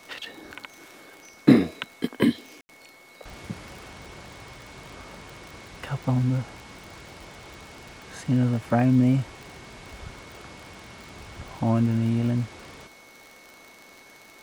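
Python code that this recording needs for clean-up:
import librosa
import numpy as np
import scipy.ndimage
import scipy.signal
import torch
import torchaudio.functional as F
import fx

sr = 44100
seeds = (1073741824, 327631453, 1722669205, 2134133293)

y = fx.fix_declick_ar(x, sr, threshold=6.5)
y = fx.notch(y, sr, hz=2200.0, q=30.0)
y = fx.fix_ambience(y, sr, seeds[0], print_start_s=13.86, print_end_s=14.36, start_s=2.61, end_s=2.69)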